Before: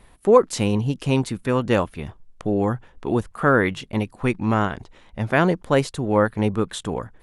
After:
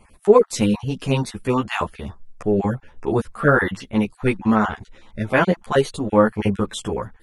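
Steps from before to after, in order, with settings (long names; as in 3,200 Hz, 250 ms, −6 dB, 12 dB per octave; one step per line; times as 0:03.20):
time-frequency cells dropped at random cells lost 21%
string-ensemble chorus
level +5 dB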